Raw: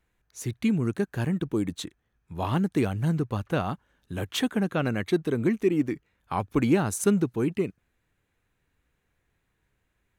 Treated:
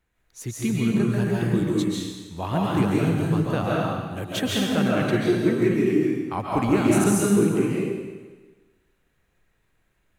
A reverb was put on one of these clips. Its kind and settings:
comb and all-pass reverb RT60 1.3 s, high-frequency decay 1×, pre-delay 100 ms, DRR −5 dB
level −1 dB

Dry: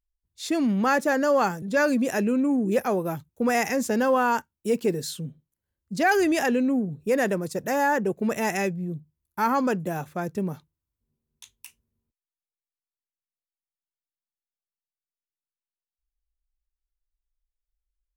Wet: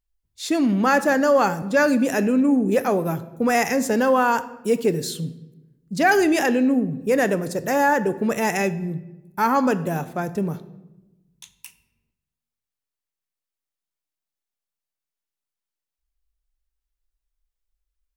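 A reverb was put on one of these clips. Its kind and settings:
rectangular room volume 430 cubic metres, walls mixed, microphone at 0.31 metres
level +3.5 dB

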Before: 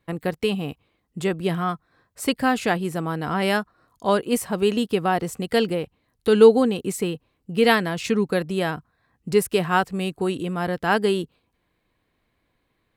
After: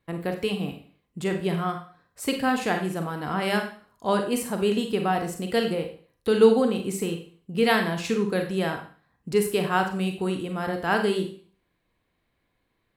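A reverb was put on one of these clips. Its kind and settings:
four-comb reverb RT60 0.44 s, combs from 32 ms, DRR 4.5 dB
level −4 dB

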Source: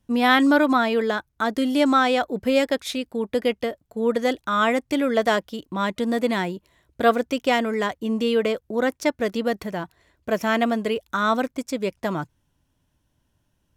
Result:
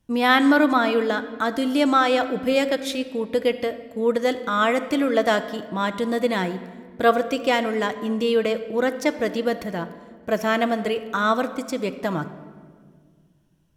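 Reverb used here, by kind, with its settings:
rectangular room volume 2,500 cubic metres, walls mixed, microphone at 0.65 metres

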